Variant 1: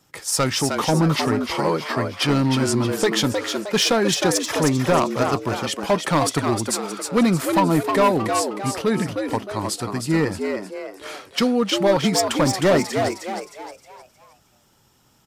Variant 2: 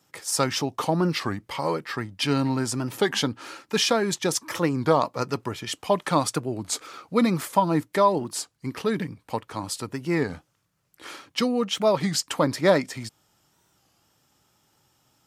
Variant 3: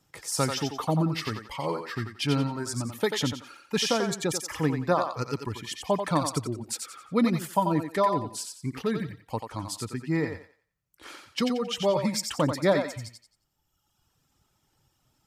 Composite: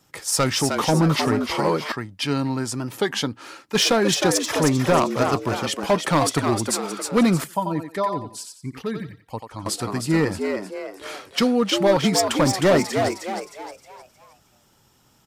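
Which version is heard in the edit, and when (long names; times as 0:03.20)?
1
0:01.92–0:03.75: punch in from 2
0:07.44–0:09.66: punch in from 3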